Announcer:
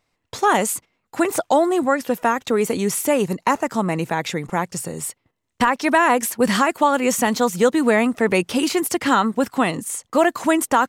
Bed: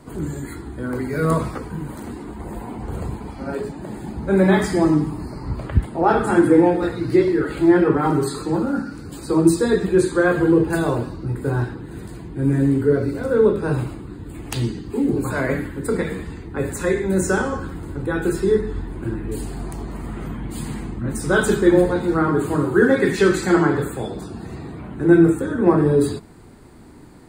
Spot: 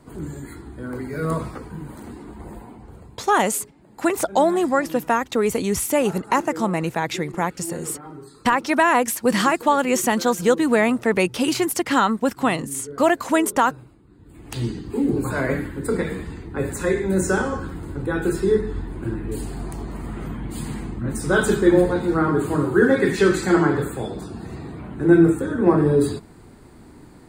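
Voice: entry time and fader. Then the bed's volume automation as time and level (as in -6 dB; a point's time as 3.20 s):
2.85 s, -1.0 dB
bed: 2.48 s -5 dB
3.21 s -20 dB
14.01 s -20 dB
14.70 s -1 dB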